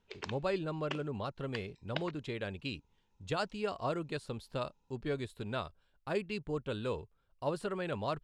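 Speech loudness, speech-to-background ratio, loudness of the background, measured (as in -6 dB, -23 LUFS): -38.5 LUFS, 7.5 dB, -46.0 LUFS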